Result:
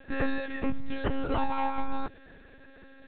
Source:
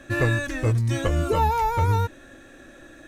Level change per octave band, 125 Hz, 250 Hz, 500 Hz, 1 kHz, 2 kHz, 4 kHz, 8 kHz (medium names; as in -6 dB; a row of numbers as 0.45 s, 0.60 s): -19.5 dB, -2.5 dB, -8.5 dB, -8.5 dB, -8.5 dB, -8.0 dB, under -40 dB